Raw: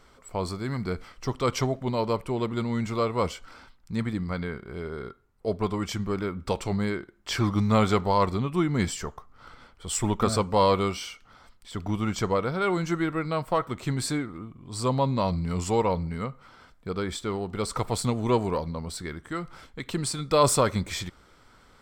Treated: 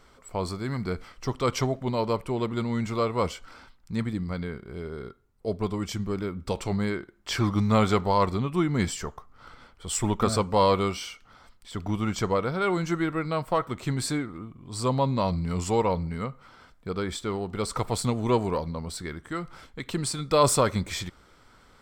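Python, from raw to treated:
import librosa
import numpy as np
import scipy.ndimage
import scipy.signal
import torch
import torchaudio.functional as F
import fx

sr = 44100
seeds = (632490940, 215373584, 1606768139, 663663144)

y = fx.peak_eq(x, sr, hz=1300.0, db=-4.5, octaves=2.4, at=(4.04, 6.57))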